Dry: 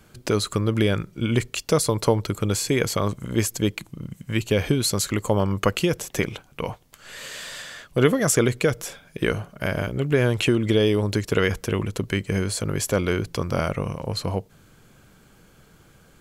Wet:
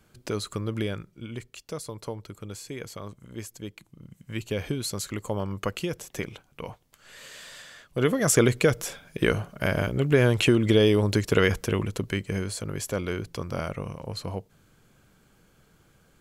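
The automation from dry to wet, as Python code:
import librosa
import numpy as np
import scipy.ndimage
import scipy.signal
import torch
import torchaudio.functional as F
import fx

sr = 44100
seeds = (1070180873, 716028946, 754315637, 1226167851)

y = fx.gain(x, sr, db=fx.line((0.79, -8.0), (1.32, -15.5), (3.74, -15.5), (4.4, -8.5), (7.86, -8.5), (8.38, 0.0), (11.48, 0.0), (12.65, -7.0)))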